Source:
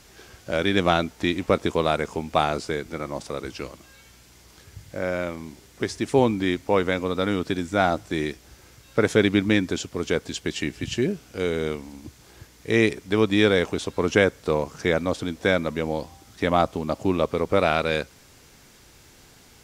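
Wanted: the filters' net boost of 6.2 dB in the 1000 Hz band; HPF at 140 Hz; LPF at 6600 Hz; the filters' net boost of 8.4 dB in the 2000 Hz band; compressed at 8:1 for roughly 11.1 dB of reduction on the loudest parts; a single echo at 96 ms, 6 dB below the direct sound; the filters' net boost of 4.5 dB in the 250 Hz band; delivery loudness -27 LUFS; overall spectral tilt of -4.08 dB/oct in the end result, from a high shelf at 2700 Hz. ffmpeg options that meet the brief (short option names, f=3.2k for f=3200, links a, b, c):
-af "highpass=140,lowpass=6.6k,equalizer=f=250:t=o:g=6,equalizer=f=1k:t=o:g=5.5,equalizer=f=2k:t=o:g=5,highshelf=f=2.7k:g=9,acompressor=threshold=-20dB:ratio=8,aecho=1:1:96:0.501,volume=-1.5dB"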